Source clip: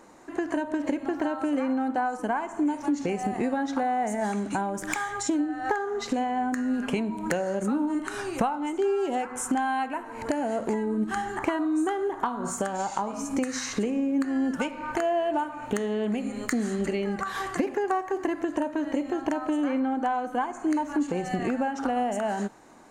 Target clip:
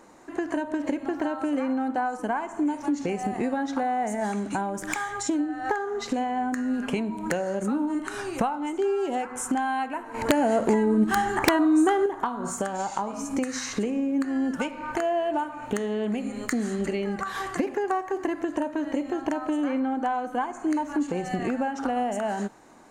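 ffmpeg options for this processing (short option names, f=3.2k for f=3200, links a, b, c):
-filter_complex "[0:a]asettb=1/sr,asplit=3[a][b][c];[a]atrim=end=10.144[d];[b]atrim=start=10.14:end=12.06,asetpts=PTS-STARTPTS,afade=t=in:d=0.004:c=qsin,afade=t=out:st=1.916:d=0.004:c=qsin,acontrast=53[e];[c]atrim=start=12.056[f];[d][e]acrossfade=d=0.004:c1=hsin:c2=qsin[g];[g][f]acrossfade=d=0.004:c1=qsin:c2=hsin,aeval=exprs='(mod(2.82*val(0)+1,2)-1)/2.82':c=same"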